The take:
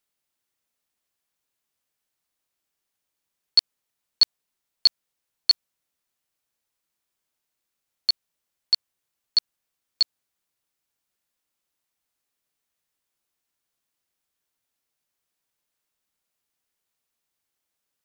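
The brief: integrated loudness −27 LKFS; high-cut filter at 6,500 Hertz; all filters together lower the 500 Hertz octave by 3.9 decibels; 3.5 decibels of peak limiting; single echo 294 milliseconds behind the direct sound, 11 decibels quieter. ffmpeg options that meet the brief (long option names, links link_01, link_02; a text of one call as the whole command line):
ffmpeg -i in.wav -af "lowpass=6500,equalizer=frequency=500:width_type=o:gain=-5,alimiter=limit=-12.5dB:level=0:latency=1,aecho=1:1:294:0.282,volume=0.5dB" out.wav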